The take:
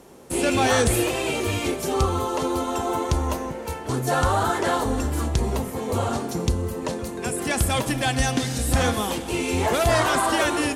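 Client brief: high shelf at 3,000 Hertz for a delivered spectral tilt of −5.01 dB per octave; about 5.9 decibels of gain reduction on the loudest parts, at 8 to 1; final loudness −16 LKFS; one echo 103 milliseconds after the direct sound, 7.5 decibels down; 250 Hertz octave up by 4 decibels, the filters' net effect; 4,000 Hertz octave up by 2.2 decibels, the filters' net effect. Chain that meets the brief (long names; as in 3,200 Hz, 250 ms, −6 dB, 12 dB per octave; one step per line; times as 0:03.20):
parametric band 250 Hz +5 dB
high-shelf EQ 3,000 Hz −5.5 dB
parametric band 4,000 Hz +7 dB
downward compressor 8 to 1, threshold −21 dBFS
single-tap delay 103 ms −7.5 dB
level +9.5 dB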